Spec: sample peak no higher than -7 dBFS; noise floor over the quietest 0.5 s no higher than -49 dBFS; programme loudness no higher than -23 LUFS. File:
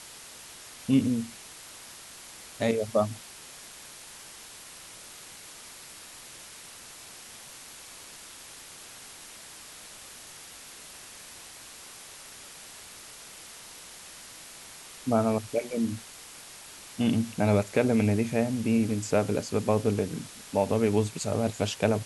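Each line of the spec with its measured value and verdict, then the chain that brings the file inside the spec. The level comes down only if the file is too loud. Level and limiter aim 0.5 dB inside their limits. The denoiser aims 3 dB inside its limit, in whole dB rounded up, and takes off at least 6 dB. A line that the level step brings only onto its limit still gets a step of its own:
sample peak -10.0 dBFS: pass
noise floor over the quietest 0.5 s -47 dBFS: fail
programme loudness -27.5 LUFS: pass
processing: noise reduction 6 dB, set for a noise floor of -47 dBFS

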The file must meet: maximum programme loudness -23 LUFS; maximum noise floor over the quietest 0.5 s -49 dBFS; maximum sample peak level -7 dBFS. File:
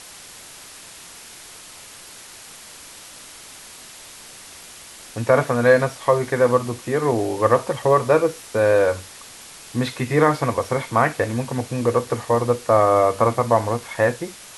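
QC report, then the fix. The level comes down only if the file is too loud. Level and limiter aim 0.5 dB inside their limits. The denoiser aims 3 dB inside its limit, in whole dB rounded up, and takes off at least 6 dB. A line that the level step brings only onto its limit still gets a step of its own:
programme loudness -20.0 LUFS: fail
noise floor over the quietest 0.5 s -42 dBFS: fail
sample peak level -4.0 dBFS: fail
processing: noise reduction 7 dB, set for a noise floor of -42 dBFS; trim -3.5 dB

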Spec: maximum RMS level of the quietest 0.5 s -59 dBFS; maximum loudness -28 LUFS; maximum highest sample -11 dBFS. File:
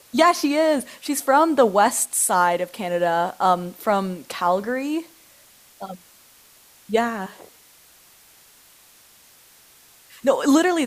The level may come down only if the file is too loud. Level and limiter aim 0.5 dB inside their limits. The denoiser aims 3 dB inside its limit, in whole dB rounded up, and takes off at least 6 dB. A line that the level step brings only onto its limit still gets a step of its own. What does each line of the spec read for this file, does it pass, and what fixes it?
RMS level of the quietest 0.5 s -52 dBFS: fail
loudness -20.5 LUFS: fail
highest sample -5.0 dBFS: fail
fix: trim -8 dB

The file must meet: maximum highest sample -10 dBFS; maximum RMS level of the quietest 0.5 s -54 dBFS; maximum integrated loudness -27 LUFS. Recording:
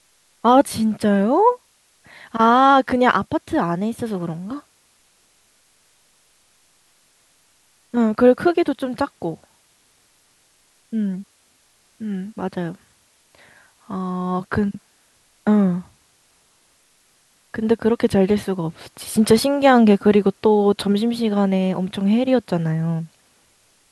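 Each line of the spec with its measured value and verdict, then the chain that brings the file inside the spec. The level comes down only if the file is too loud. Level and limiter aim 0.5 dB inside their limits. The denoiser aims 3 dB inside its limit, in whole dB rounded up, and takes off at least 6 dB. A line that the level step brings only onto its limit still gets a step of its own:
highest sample -3.0 dBFS: fail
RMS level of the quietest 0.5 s -59 dBFS: pass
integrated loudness -19.0 LUFS: fail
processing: trim -8.5 dB

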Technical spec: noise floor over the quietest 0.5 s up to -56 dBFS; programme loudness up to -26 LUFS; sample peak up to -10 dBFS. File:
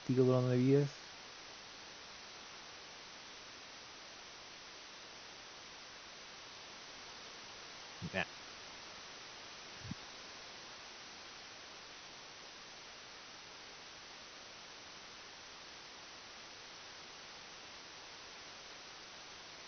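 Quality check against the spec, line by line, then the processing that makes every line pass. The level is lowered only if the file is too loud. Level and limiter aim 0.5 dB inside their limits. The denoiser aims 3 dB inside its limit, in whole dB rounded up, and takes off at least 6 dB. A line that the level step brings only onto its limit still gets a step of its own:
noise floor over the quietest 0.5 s -53 dBFS: fail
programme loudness -44.0 LUFS: pass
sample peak -18.5 dBFS: pass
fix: noise reduction 6 dB, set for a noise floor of -53 dBFS

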